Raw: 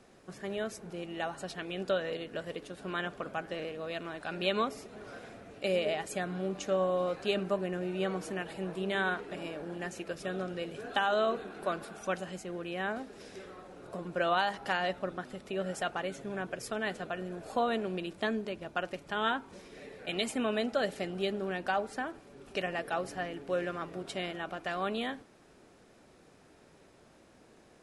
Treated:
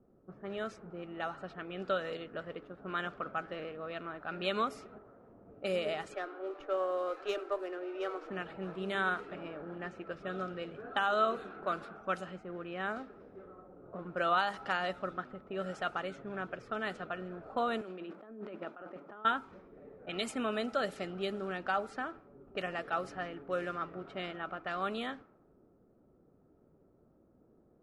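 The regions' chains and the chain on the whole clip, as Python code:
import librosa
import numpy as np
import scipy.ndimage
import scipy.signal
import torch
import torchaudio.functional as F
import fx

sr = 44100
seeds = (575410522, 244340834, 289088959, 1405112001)

y = fx.chain(x, sr, fx.level_steps(step_db=13),
    fx.doppler_dist(depth_ms=0.68), at=(4.98, 5.48))
y = fx.chain(y, sr, fx.steep_highpass(hz=290.0, slope=72),
    fx.high_shelf(hz=2200.0, db=-5.0),
    fx.running_max(window=3), at=(6.14, 8.3))
y = fx.chain(y, sr, fx.highpass(hz=210.0, slope=24),
    fx.over_compress(threshold_db=-42.0, ratio=-1.0), at=(17.81, 19.25))
y = fx.env_lowpass(y, sr, base_hz=400.0, full_db=-29.0)
y = fx.peak_eq(y, sr, hz=1300.0, db=12.0, octaves=0.21)
y = y * 10.0 ** (-3.5 / 20.0)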